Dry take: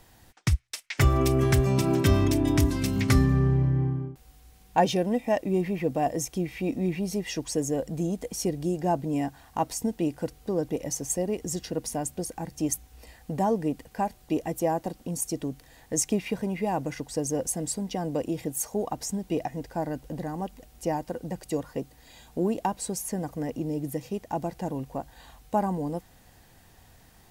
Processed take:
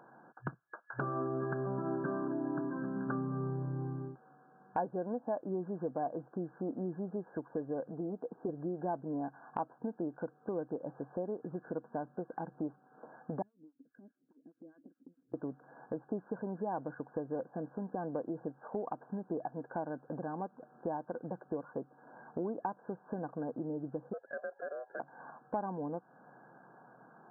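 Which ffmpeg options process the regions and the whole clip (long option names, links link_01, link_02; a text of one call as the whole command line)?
ffmpeg -i in.wav -filter_complex "[0:a]asettb=1/sr,asplit=3[link_01][link_02][link_03];[link_01]atrim=end=7.914[link_04];[link_02]atrim=start=7.91:end=8.49,asetpts=PTS-STARTPTS,afade=type=in:duration=0.004:curve=qsin,afade=type=out:start_time=0.576:duration=0.004:curve=qsin,bandpass=frequency=440:width_type=q:width=0.59,bandreject=frequency=570:width=6.3[link_05];[link_03]atrim=start=8.486[link_06];[link_04][link_05]acrossfade=duration=0.004:curve1=hsin:curve2=qsin[link_07];[link_07][link_06]acrossfade=duration=0.004:curve1=qsin:curve2=hsin,asettb=1/sr,asplit=3[link_08][link_09][link_10];[link_08]atrim=end=13.424[link_11];[link_09]atrim=start=13.42:end=15.34,asetpts=PTS-STARTPTS,afade=type=in:duration=0.004:curve=qsin,afade=type=out:start_time=1.916:duration=0.004:curve=qsin,asplit=3[link_12][link_13][link_14];[link_12]bandpass=frequency=270:width_type=q:width=8,volume=0dB[link_15];[link_13]bandpass=frequency=2290:width_type=q:width=8,volume=-6dB[link_16];[link_14]bandpass=frequency=3010:width_type=q:width=8,volume=-9dB[link_17];[link_15][link_16][link_17]amix=inputs=3:normalize=0,acompressor=threshold=-49dB:ratio=8:attack=3.2:release=140:knee=1:detection=peak,acrossover=split=780[link_18][link_19];[link_18]aeval=exprs='val(0)*(1-1/2+1/2*cos(2*PI*4.9*n/s))':channel_layout=same[link_20];[link_19]aeval=exprs='val(0)*(1-1/2-1/2*cos(2*PI*4.9*n/s))':channel_layout=same[link_21];[link_20][link_21]amix=inputs=2:normalize=0[link_22];[link_10]atrim=start=15.336[link_23];[link_11][link_22]acrossfade=duration=0.004:curve1=hsin:curve2=qsin[link_24];[link_24][link_23]acrossfade=duration=0.004:curve1=qsin:curve2=hsin,asettb=1/sr,asplit=3[link_25][link_26][link_27];[link_25]atrim=end=24.134[link_28];[link_26]atrim=start=24.13:end=25,asetpts=PTS-STARTPTS,afade=type=in:duration=0.004:curve=qsin,afade=type=out:start_time=0.866:duration=0.004:curve=qsin,acontrast=50,aeval=exprs='val(0)*sin(2*PI*890*n/s)':channel_layout=same,asplit=3[link_29][link_30][link_31];[link_29]bandpass=frequency=530:width_type=q:width=8,volume=0dB[link_32];[link_30]bandpass=frequency=1840:width_type=q:width=8,volume=-6dB[link_33];[link_31]bandpass=frequency=2480:width_type=q:width=8,volume=-9dB[link_34];[link_32][link_33][link_34]amix=inputs=3:normalize=0[link_35];[link_27]atrim=start=24.996[link_36];[link_28][link_35]acrossfade=duration=0.004:curve1=hsin:curve2=qsin[link_37];[link_37][link_36]acrossfade=duration=0.004:curve1=qsin:curve2=hsin,aemphasis=mode=production:type=bsi,afftfilt=real='re*between(b*sr/4096,120,1700)':imag='im*between(b*sr/4096,120,1700)':win_size=4096:overlap=0.75,acompressor=threshold=-44dB:ratio=2.5,volume=4.5dB" out.wav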